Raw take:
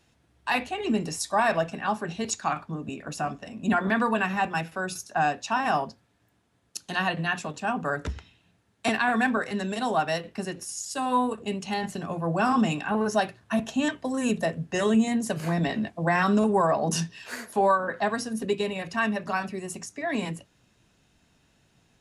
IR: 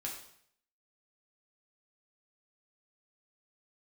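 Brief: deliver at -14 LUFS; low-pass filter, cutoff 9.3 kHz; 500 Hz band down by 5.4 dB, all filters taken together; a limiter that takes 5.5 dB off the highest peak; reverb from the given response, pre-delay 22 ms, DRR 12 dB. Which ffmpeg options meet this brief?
-filter_complex "[0:a]lowpass=9300,equalizer=f=500:t=o:g=-7.5,alimiter=limit=0.119:level=0:latency=1,asplit=2[s0][s1];[1:a]atrim=start_sample=2205,adelay=22[s2];[s1][s2]afir=irnorm=-1:irlink=0,volume=0.251[s3];[s0][s3]amix=inputs=2:normalize=0,volume=6.31"

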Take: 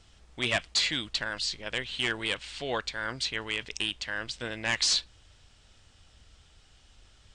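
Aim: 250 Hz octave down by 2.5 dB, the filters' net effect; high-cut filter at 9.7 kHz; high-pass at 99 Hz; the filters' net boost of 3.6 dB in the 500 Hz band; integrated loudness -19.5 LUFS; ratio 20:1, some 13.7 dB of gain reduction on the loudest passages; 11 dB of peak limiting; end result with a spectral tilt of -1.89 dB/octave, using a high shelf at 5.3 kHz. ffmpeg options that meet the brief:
-af "highpass=99,lowpass=9700,equalizer=f=250:t=o:g=-6,equalizer=f=500:t=o:g=6,highshelf=f=5300:g=-3,acompressor=threshold=0.0141:ratio=20,volume=18.8,alimiter=limit=0.335:level=0:latency=1"

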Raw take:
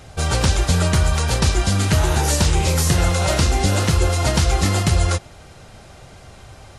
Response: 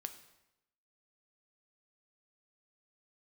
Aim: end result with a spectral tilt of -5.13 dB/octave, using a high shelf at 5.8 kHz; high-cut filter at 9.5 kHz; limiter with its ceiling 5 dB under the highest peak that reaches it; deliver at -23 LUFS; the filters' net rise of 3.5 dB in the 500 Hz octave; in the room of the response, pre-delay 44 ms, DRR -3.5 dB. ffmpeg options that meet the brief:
-filter_complex "[0:a]lowpass=9500,equalizer=f=500:t=o:g=4.5,highshelf=f=5800:g=-6,alimiter=limit=0.335:level=0:latency=1,asplit=2[s0][s1];[1:a]atrim=start_sample=2205,adelay=44[s2];[s1][s2]afir=irnorm=-1:irlink=0,volume=2.11[s3];[s0][s3]amix=inputs=2:normalize=0,volume=0.398"

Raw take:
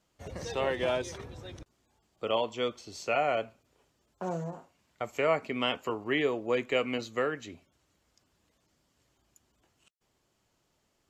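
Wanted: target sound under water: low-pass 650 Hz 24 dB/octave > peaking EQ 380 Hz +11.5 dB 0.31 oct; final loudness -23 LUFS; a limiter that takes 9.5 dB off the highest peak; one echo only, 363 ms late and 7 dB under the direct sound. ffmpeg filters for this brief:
-af "alimiter=limit=0.0708:level=0:latency=1,lowpass=f=650:w=0.5412,lowpass=f=650:w=1.3066,equalizer=f=380:t=o:w=0.31:g=11.5,aecho=1:1:363:0.447,volume=3.16"

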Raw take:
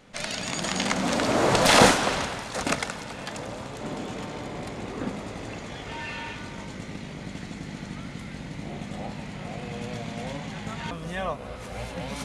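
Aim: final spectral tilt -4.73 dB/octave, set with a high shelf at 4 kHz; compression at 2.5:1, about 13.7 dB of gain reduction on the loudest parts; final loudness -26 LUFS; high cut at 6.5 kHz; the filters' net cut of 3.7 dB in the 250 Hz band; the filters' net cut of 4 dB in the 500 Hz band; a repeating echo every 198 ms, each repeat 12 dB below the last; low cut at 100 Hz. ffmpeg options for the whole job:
-af "highpass=100,lowpass=6500,equalizer=f=250:t=o:g=-3.5,equalizer=f=500:t=o:g=-4,highshelf=f=4000:g=-7.5,acompressor=threshold=0.0178:ratio=2.5,aecho=1:1:198|396|594:0.251|0.0628|0.0157,volume=3.76"

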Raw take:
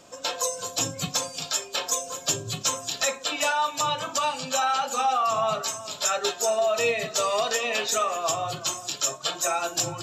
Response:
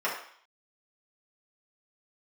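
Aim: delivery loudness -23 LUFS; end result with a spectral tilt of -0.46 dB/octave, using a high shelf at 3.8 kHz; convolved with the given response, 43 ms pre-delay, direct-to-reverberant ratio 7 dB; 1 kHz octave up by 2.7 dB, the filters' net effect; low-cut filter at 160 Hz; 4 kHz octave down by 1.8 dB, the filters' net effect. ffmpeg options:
-filter_complex "[0:a]highpass=160,equalizer=f=1000:t=o:g=3.5,highshelf=f=3800:g=4.5,equalizer=f=4000:t=o:g=-5.5,asplit=2[s0][s1];[1:a]atrim=start_sample=2205,adelay=43[s2];[s1][s2]afir=irnorm=-1:irlink=0,volume=0.126[s3];[s0][s3]amix=inputs=2:normalize=0,volume=1.06"

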